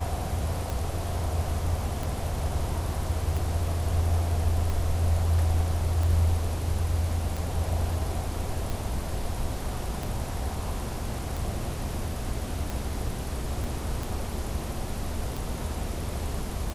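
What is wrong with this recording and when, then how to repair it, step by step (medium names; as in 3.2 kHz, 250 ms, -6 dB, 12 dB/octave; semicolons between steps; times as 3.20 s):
tick 45 rpm
13.64 s: pop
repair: de-click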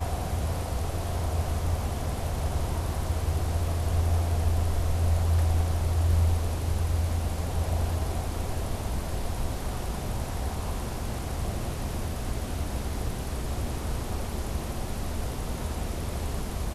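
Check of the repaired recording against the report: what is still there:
13.64 s: pop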